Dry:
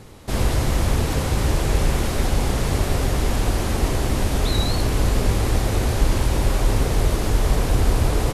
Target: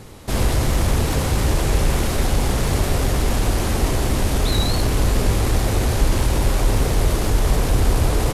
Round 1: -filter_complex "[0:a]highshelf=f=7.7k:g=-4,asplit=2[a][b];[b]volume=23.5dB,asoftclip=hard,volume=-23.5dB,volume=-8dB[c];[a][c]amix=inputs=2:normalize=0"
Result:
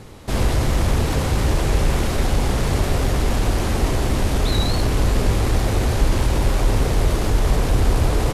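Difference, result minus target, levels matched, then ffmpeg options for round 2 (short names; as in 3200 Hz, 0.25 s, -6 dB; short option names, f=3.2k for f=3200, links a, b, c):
8000 Hz band -3.5 dB
-filter_complex "[0:a]highshelf=f=7.7k:g=3,asplit=2[a][b];[b]volume=23.5dB,asoftclip=hard,volume=-23.5dB,volume=-8dB[c];[a][c]amix=inputs=2:normalize=0"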